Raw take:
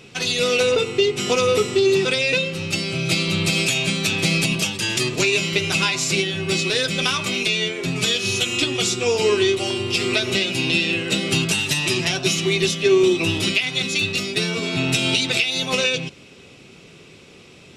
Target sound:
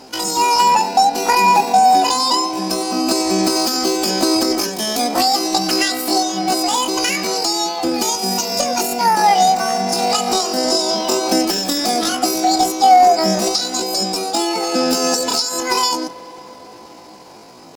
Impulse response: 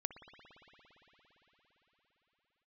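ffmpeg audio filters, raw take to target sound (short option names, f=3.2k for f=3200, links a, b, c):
-filter_complex "[0:a]highshelf=f=3.5k:g=-7,asetrate=85689,aresample=44100,atempo=0.514651,asplit=2[a][b];[1:a]atrim=start_sample=2205,lowpass=6.9k[c];[b][c]afir=irnorm=-1:irlink=0,volume=-6.5dB[d];[a][d]amix=inputs=2:normalize=0,volume=3.5dB"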